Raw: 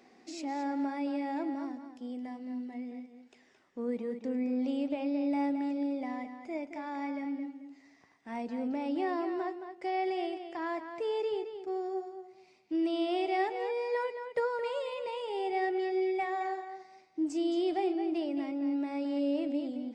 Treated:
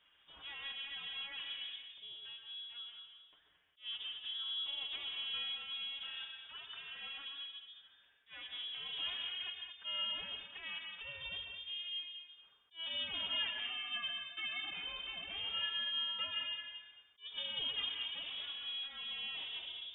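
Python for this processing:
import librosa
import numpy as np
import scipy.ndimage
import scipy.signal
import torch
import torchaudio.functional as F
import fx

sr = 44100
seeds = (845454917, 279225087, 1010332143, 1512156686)

y = fx.lower_of_two(x, sr, delay_ms=7.9)
y = fx.low_shelf(y, sr, hz=280.0, db=-8.5)
y = fx.rev_freeverb(y, sr, rt60_s=0.58, hf_ratio=0.4, predelay_ms=95, drr_db=4.0)
y = fx.freq_invert(y, sr, carrier_hz=3600)
y = fx.attack_slew(y, sr, db_per_s=290.0)
y = F.gain(torch.from_numpy(y), -6.0).numpy()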